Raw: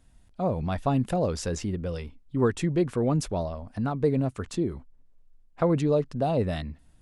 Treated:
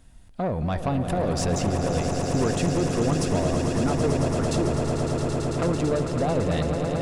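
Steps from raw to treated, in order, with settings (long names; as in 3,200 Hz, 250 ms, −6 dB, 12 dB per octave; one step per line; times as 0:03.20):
downward compressor 2 to 1, threshold −30 dBFS, peak gain reduction 7 dB
soft clipping −26.5 dBFS, distortion −14 dB
echo that builds up and dies away 111 ms, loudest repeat 8, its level −9 dB
level +7 dB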